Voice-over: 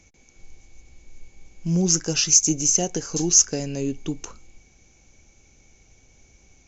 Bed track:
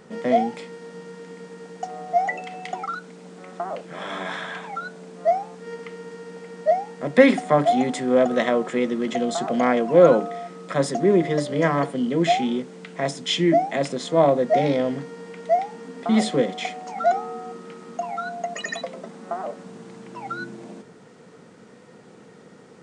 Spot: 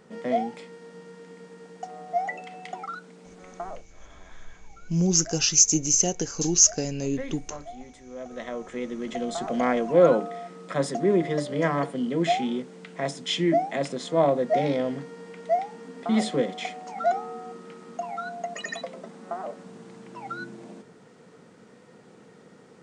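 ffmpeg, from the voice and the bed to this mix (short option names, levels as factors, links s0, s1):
-filter_complex "[0:a]adelay=3250,volume=0.841[s0];[1:a]volume=4.22,afade=t=out:st=3.66:d=0.21:silence=0.149624,afade=t=in:st=8.15:d=1.44:silence=0.11885[s1];[s0][s1]amix=inputs=2:normalize=0"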